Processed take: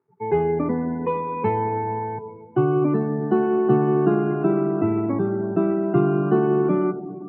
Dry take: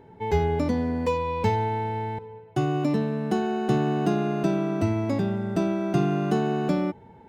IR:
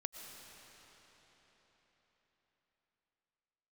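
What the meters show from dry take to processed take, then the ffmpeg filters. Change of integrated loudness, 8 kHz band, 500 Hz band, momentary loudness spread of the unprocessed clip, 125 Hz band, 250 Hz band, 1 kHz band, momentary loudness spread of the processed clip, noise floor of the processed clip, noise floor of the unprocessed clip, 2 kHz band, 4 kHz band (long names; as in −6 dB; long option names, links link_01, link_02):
+4.0 dB, can't be measured, +6.0 dB, 4 LU, +1.0 dB, +3.5 dB, +2.5 dB, 7 LU, −42 dBFS, −50 dBFS, −0.5 dB, below −10 dB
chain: -filter_complex "[0:a]aeval=exprs='sgn(val(0))*max(abs(val(0))-0.00158,0)':channel_layout=same,equalizer=frequency=560:width_type=o:width=0.22:gain=-5,asplit=2[link_01][link_02];[1:a]atrim=start_sample=2205,asetrate=48510,aresample=44100[link_03];[link_02][link_03]afir=irnorm=-1:irlink=0,volume=4dB[link_04];[link_01][link_04]amix=inputs=2:normalize=0,afftdn=noise_reduction=25:noise_floor=-31,highpass=frequency=120:width=0.5412,highpass=frequency=120:width=1.3066,equalizer=frequency=130:width_type=q:width=4:gain=5,equalizer=frequency=370:width_type=q:width=4:gain=9,equalizer=frequency=1200:width_type=q:width=4:gain=9,lowpass=frequency=2300:width=0.5412,lowpass=frequency=2300:width=1.3066,volume=-5.5dB"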